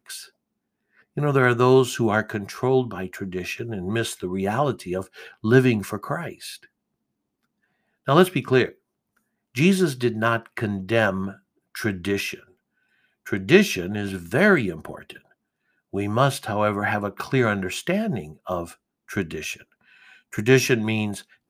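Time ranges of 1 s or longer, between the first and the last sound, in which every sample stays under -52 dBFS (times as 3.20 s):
6.66–8.06 s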